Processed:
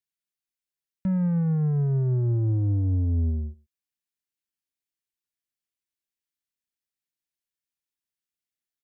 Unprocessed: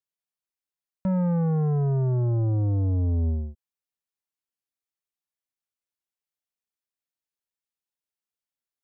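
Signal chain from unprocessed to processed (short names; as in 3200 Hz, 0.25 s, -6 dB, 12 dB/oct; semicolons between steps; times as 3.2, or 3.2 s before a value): band shelf 760 Hz -9.5 dB; outdoor echo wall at 20 m, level -23 dB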